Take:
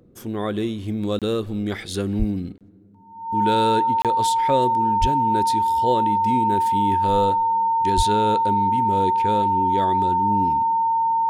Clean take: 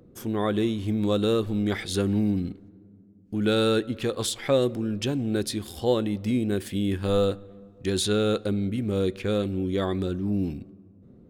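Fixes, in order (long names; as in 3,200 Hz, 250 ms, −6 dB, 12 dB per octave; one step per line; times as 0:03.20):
notch filter 910 Hz, Q 30
0:02.18–0:02.30: high-pass filter 140 Hz 24 dB per octave
0:05.00–0:05.12: high-pass filter 140 Hz 24 dB per octave
0:07.96–0:08.08: high-pass filter 140 Hz 24 dB per octave
repair the gap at 0:01.19/0:02.58/0:04.02, 27 ms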